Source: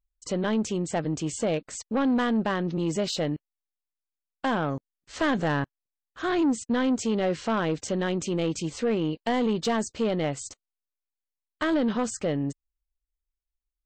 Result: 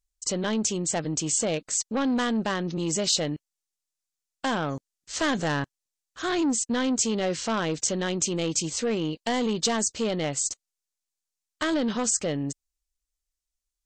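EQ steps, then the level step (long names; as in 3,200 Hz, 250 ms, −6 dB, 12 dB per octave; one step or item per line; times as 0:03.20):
parametric band 6,800 Hz +13.5 dB 1.7 octaves
−1.5 dB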